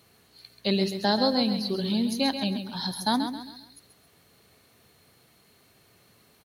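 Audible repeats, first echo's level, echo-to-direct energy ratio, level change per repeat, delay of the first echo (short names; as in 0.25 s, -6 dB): 4, -8.5 dB, -8.0 dB, -8.5 dB, 0.134 s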